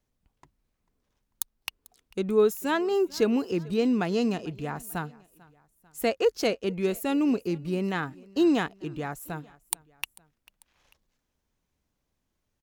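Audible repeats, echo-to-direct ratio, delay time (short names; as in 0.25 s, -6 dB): 2, -22.5 dB, 0.444 s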